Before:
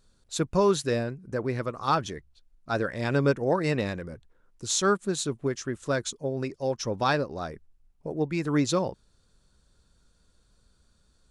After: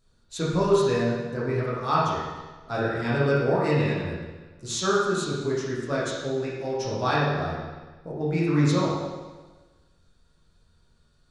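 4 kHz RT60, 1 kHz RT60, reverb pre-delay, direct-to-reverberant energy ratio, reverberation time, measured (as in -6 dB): 1.3 s, 1.3 s, 13 ms, -7.5 dB, 1.3 s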